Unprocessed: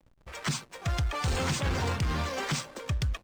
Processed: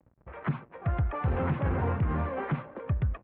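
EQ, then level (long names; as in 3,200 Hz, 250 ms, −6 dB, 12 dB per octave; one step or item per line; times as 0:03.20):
Gaussian smoothing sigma 4.3 samples
high-pass filter 61 Hz
high-frequency loss of the air 310 metres
+3.0 dB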